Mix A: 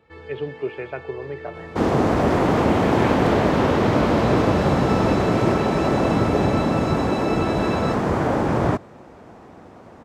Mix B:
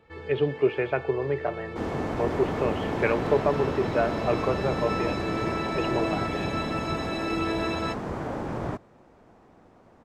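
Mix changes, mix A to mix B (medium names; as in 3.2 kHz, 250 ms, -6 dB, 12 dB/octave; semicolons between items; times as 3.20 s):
speech +5.0 dB; second sound -11.5 dB; master: remove high-pass 49 Hz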